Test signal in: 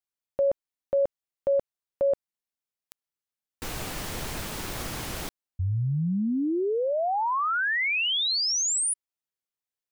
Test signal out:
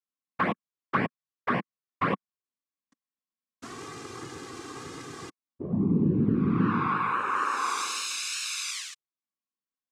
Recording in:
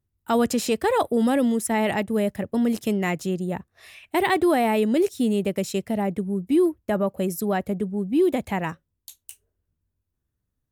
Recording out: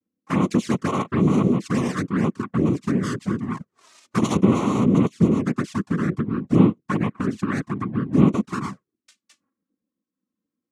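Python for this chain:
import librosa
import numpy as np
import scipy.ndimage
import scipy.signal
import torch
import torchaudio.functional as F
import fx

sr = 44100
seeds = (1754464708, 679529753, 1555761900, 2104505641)

y = fx.noise_vocoder(x, sr, seeds[0], bands=3)
y = fx.env_flanger(y, sr, rest_ms=3.8, full_db=-18.0)
y = fx.small_body(y, sr, hz=(200.0, 1100.0), ring_ms=20, db=12)
y = F.gain(torch.from_numpy(y), -4.5).numpy()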